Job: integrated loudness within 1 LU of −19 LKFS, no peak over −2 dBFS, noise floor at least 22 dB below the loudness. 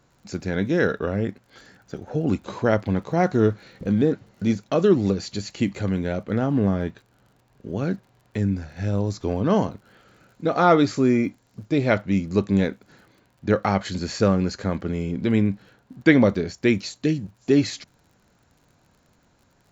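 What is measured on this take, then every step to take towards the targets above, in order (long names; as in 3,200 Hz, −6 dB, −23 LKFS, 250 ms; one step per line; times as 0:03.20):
crackle rate 47 per second; integrated loudness −23.0 LKFS; sample peak −2.5 dBFS; target loudness −19.0 LKFS
→ click removal
level +4 dB
brickwall limiter −2 dBFS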